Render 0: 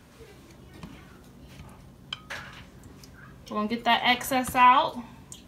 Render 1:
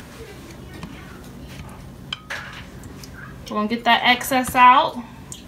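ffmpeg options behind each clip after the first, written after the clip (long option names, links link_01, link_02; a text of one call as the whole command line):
ffmpeg -i in.wav -filter_complex "[0:a]equalizer=frequency=1800:width_type=o:width=0.36:gain=2.5,asplit=2[link_01][link_02];[link_02]acompressor=mode=upward:threshold=-32dB:ratio=2.5,volume=2dB[link_03];[link_01][link_03]amix=inputs=2:normalize=0,volume=-1dB" out.wav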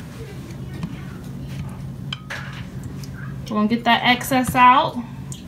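ffmpeg -i in.wav -af "equalizer=frequency=140:width_type=o:width=1.4:gain=11.5,volume=-1dB" out.wav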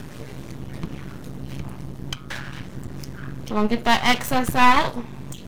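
ffmpeg -i in.wav -af "aeval=exprs='max(val(0),0)':channel_layout=same,volume=1.5dB" out.wav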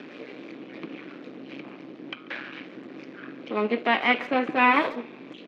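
ffmpeg -i in.wav -filter_complex "[0:a]acrossover=split=2800[link_01][link_02];[link_02]acompressor=threshold=-41dB:ratio=4:attack=1:release=60[link_03];[link_01][link_03]amix=inputs=2:normalize=0,highpass=frequency=250:width=0.5412,highpass=frequency=250:width=1.3066,equalizer=frequency=300:width_type=q:width=4:gain=6,equalizer=frequency=500:width_type=q:width=4:gain=4,equalizer=frequency=920:width_type=q:width=4:gain=-5,equalizer=frequency=2400:width_type=q:width=4:gain=8,lowpass=frequency=4100:width=0.5412,lowpass=frequency=4100:width=1.3066,asplit=2[link_04][link_05];[link_05]adelay=140,highpass=300,lowpass=3400,asoftclip=type=hard:threshold=-12.5dB,volume=-18dB[link_06];[link_04][link_06]amix=inputs=2:normalize=0,volume=-2.5dB" out.wav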